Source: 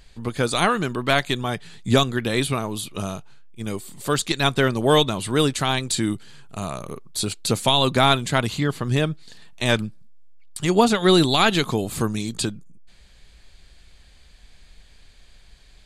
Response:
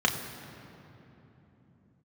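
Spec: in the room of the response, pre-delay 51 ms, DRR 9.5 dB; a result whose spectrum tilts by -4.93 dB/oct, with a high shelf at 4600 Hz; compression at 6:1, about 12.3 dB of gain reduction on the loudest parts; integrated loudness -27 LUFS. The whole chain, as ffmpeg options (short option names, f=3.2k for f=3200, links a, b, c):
-filter_complex "[0:a]highshelf=f=4.6k:g=-6.5,acompressor=threshold=-25dB:ratio=6,asplit=2[a][b];[1:a]atrim=start_sample=2205,adelay=51[c];[b][c]afir=irnorm=-1:irlink=0,volume=-22.5dB[d];[a][d]amix=inputs=2:normalize=0,volume=3dB"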